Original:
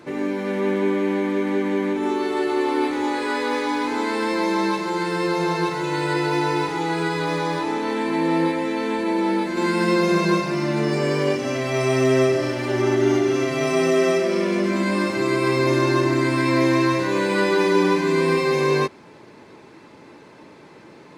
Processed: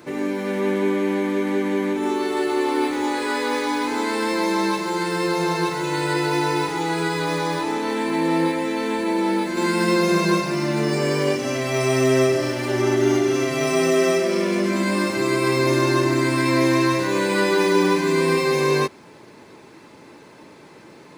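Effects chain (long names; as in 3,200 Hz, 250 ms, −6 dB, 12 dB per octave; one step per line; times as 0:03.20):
high-shelf EQ 7,600 Hz +11 dB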